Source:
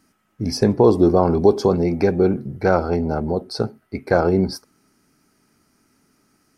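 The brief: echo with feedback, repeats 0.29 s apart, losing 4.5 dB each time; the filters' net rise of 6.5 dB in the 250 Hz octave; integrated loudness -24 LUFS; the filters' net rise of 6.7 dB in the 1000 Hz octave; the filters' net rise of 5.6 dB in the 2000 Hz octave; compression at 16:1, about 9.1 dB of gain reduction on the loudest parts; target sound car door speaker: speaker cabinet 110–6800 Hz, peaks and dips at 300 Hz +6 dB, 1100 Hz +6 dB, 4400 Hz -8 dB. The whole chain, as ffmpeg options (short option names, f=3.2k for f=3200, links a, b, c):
-af "equalizer=f=250:t=o:g=5.5,equalizer=f=1k:t=o:g=5,equalizer=f=2k:t=o:g=4.5,acompressor=threshold=-14dB:ratio=16,highpass=110,equalizer=f=300:t=q:w=4:g=6,equalizer=f=1.1k:t=q:w=4:g=6,equalizer=f=4.4k:t=q:w=4:g=-8,lowpass=f=6.8k:w=0.5412,lowpass=f=6.8k:w=1.3066,aecho=1:1:290|580|870|1160|1450|1740|2030|2320|2610:0.596|0.357|0.214|0.129|0.0772|0.0463|0.0278|0.0167|0.01,volume=-5.5dB"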